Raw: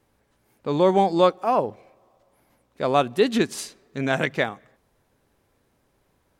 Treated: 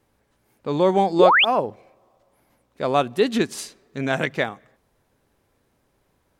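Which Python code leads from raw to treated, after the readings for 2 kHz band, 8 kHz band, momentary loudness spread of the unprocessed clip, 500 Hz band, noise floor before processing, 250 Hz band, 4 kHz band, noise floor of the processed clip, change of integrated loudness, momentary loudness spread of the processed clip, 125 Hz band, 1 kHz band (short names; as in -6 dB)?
+6.0 dB, 0.0 dB, 13 LU, +1.0 dB, -68 dBFS, +0.5 dB, +6.5 dB, -68 dBFS, +2.0 dB, 17 LU, 0.0 dB, +2.0 dB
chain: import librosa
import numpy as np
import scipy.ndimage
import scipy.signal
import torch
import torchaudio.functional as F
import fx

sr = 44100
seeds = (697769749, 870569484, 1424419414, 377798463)

y = fx.spec_paint(x, sr, seeds[0], shape='rise', start_s=1.19, length_s=0.26, low_hz=320.0, high_hz=3700.0, level_db=-15.0)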